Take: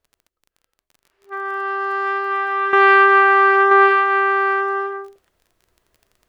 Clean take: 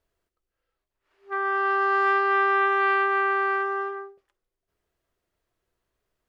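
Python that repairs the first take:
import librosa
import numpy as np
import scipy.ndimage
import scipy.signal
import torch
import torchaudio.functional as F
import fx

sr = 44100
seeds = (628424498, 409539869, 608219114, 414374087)

y = fx.fix_declick_ar(x, sr, threshold=6.5)
y = fx.fix_echo_inverse(y, sr, delay_ms=981, level_db=-4.5)
y = fx.gain(y, sr, db=fx.steps((0.0, 0.0), (2.73, -11.0)))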